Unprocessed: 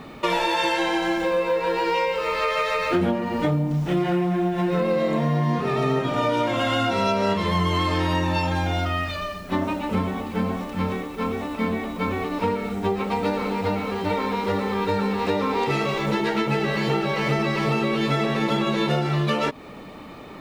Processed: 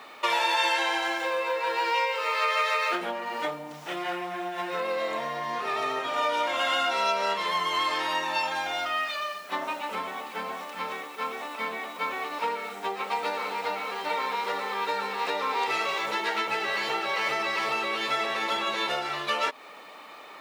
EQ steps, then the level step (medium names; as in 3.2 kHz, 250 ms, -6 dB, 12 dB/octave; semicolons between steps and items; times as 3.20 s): high-pass 770 Hz 12 dB/octave; 0.0 dB